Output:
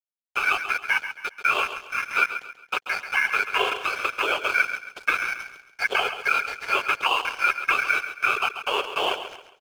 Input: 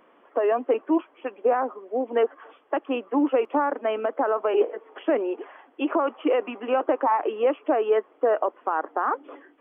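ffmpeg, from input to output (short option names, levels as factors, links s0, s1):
-filter_complex "[0:a]asplit=2[s0][s1];[s1]acompressor=threshold=0.0251:ratio=6,volume=0.841[s2];[s0][s2]amix=inputs=2:normalize=0,afftfilt=real='hypot(re,im)*cos(2*PI*random(0))':imag='hypot(re,im)*sin(2*PI*random(1))':win_size=512:overlap=0.75,aeval=exprs='val(0)*sin(2*PI*1900*n/s)':c=same,highpass=f=410:t=q:w=4.9,aeval=exprs='sgn(val(0))*max(abs(val(0))-0.00794,0)':c=same,asplit=2[s3][s4];[s4]aecho=0:1:136|272|408|544:0.299|0.102|0.0345|0.0117[s5];[s3][s5]amix=inputs=2:normalize=0,volume=2.11"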